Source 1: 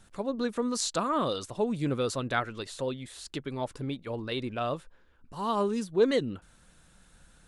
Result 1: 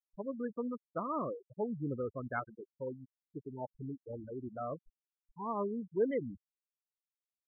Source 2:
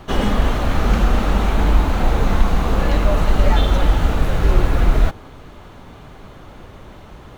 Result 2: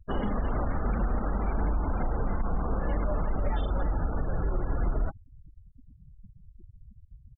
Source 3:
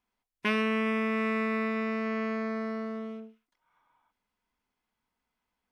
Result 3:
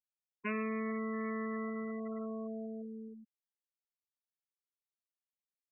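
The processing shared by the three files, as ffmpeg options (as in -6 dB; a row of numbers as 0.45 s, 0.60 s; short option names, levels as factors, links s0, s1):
-af "lowpass=2800,afftfilt=real='re*gte(hypot(re,im),0.0708)':imag='im*gte(hypot(re,im),0.0708)':win_size=1024:overlap=0.75,alimiter=limit=0.251:level=0:latency=1:release=105,volume=0.422"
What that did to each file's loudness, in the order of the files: -8.5 LU, -12.5 LU, -9.0 LU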